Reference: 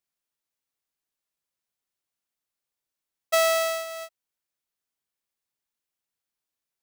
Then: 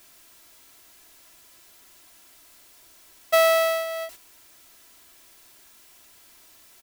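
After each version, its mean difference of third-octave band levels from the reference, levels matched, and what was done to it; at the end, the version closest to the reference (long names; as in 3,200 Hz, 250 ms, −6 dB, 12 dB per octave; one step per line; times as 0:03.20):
2.0 dB: converter with a step at zero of −39 dBFS
comb filter 3 ms, depth 48%
noise gate −41 dBFS, range −8 dB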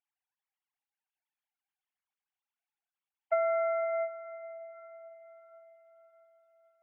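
15.0 dB: three sine waves on the formant tracks
downward compressor, threshold −32 dBFS, peak gain reduction 13 dB
feedback delay with all-pass diffusion 546 ms, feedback 50%, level −14.5 dB
level +5 dB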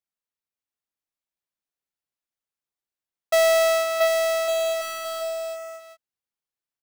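4.0 dB: high-shelf EQ 3,400 Hz −4.5 dB
leveller curve on the samples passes 3
on a send: bouncing-ball delay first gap 680 ms, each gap 0.7×, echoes 5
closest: first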